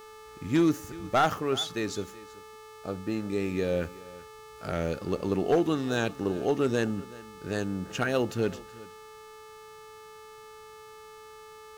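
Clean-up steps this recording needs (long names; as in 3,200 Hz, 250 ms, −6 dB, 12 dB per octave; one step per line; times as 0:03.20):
clipped peaks rebuilt −17 dBFS
hum removal 434.2 Hz, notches 39
notch filter 1,200 Hz, Q 30
echo removal 377 ms −20 dB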